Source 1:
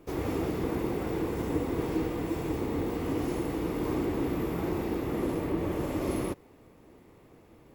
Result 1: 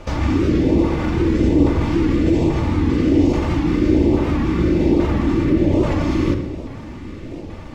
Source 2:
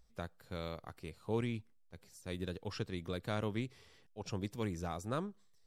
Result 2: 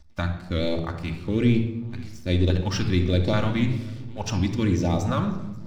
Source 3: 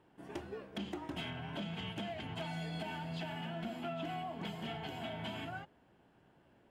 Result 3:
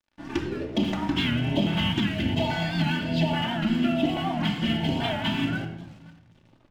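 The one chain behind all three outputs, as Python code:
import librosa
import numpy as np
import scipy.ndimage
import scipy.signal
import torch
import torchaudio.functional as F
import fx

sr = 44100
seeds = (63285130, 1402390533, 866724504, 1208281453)

p1 = scipy.signal.sosfilt(scipy.signal.butter(4, 6300.0, 'lowpass', fs=sr, output='sos'), x)
p2 = fx.over_compress(p1, sr, threshold_db=-38.0, ratio=-0.5)
p3 = p1 + (p2 * librosa.db_to_amplitude(0.5))
p4 = fx.echo_feedback(p3, sr, ms=534, feedback_pct=37, wet_db=-21.5)
p5 = fx.filter_lfo_notch(p4, sr, shape='saw_up', hz=1.2, low_hz=280.0, high_hz=1700.0, q=0.71)
p6 = np.sign(p5) * np.maximum(np.abs(p5) - 10.0 ** (-57.5 / 20.0), 0.0)
p7 = fx.low_shelf(p6, sr, hz=390.0, db=3.0)
p8 = fx.room_shoebox(p7, sr, seeds[0], volume_m3=3800.0, walls='furnished', distance_m=2.5)
p9 = fx.record_warp(p8, sr, rpm=78.0, depth_cents=100.0)
y = p9 * librosa.db_to_amplitude(9.0)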